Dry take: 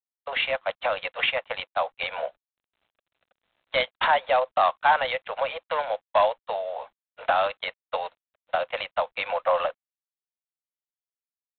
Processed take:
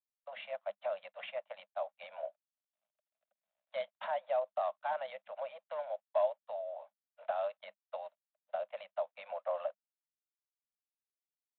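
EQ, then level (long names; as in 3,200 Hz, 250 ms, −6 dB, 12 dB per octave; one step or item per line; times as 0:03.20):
pair of resonant band-passes 350 Hz, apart 1.6 octaves
high-frequency loss of the air 53 metres
first difference
+15.0 dB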